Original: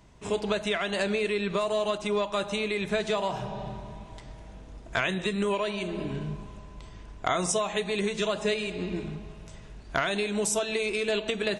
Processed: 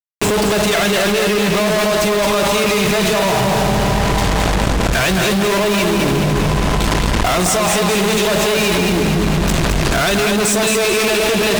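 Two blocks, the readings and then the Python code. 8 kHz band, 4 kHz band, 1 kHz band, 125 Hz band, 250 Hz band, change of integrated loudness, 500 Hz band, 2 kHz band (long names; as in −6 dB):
+16.5 dB, +16.0 dB, +15.5 dB, +19.5 dB, +16.0 dB, +14.0 dB, +13.0 dB, +14.5 dB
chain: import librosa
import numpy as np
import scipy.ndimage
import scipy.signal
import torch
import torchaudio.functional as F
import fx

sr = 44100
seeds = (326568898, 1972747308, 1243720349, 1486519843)

y = fx.fuzz(x, sr, gain_db=52.0, gate_db=-43.0)
y = fx.echo_feedback(y, sr, ms=217, feedback_pct=43, wet_db=-4.0)
y = fx.env_flatten(y, sr, amount_pct=100)
y = y * librosa.db_to_amplitude(-5.0)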